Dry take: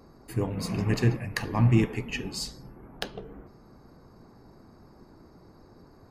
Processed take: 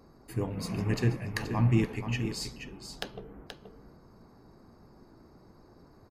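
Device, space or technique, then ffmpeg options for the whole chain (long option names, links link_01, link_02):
ducked delay: -filter_complex "[0:a]asplit=3[link_01][link_02][link_03];[link_02]adelay=478,volume=-8dB[link_04];[link_03]apad=whole_len=290092[link_05];[link_04][link_05]sidechaincompress=threshold=-29dB:ratio=8:attack=16:release=206[link_06];[link_01][link_06]amix=inputs=2:normalize=0,volume=-3.5dB"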